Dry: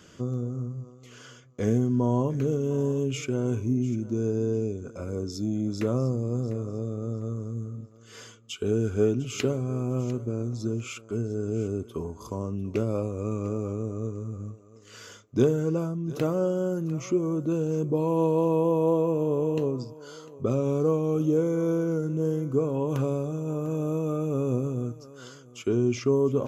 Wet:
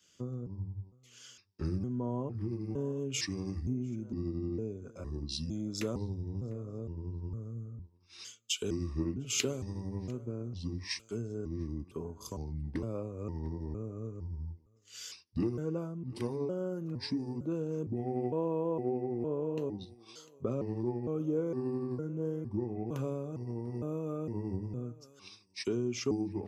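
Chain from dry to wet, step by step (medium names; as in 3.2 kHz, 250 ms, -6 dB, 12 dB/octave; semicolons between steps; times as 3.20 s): pitch shift switched off and on -4.5 st, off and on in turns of 458 ms; compression 2.5:1, threshold -33 dBFS, peak gain reduction 10 dB; three bands expanded up and down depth 100%; trim -1.5 dB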